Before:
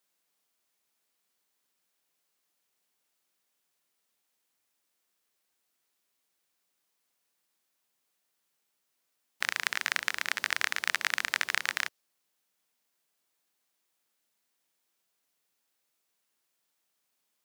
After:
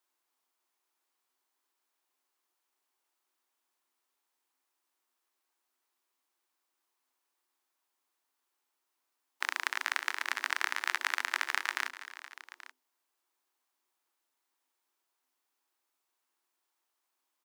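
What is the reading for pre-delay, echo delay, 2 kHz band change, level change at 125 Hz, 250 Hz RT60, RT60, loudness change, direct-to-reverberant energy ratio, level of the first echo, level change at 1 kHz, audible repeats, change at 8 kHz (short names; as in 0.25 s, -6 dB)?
none, 0.248 s, -2.5 dB, n/a, none, none, -3.0 dB, none, -17.0 dB, +1.5 dB, 3, -5.0 dB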